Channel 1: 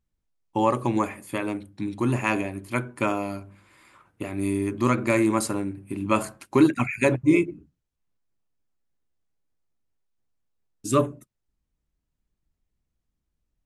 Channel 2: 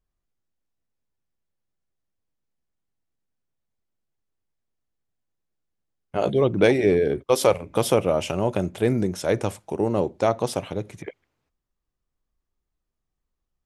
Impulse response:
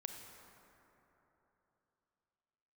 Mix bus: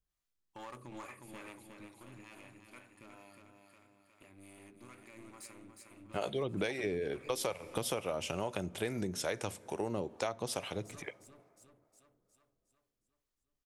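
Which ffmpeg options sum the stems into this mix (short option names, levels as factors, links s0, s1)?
-filter_complex "[0:a]alimiter=limit=0.126:level=0:latency=1:release=107,aeval=exprs='clip(val(0),-1,0.0299)':c=same,volume=0.2,afade=t=out:st=1.68:d=0.21:silence=0.446684,asplit=2[s0][s1];[s1]volume=0.562[s2];[1:a]volume=0.631,asplit=2[s3][s4];[s4]volume=0.178[s5];[2:a]atrim=start_sample=2205[s6];[s5][s6]afir=irnorm=-1:irlink=0[s7];[s2]aecho=0:1:360|720|1080|1440|1800|2160|2520|2880:1|0.54|0.292|0.157|0.085|0.0459|0.0248|0.0134[s8];[s0][s3][s7][s8]amix=inputs=4:normalize=0,tiltshelf=f=1200:g=-5,acrossover=split=470[s9][s10];[s9]aeval=exprs='val(0)*(1-0.5/2+0.5/2*cos(2*PI*2.3*n/s))':c=same[s11];[s10]aeval=exprs='val(0)*(1-0.5/2-0.5/2*cos(2*PI*2.3*n/s))':c=same[s12];[s11][s12]amix=inputs=2:normalize=0,acompressor=threshold=0.0282:ratio=12"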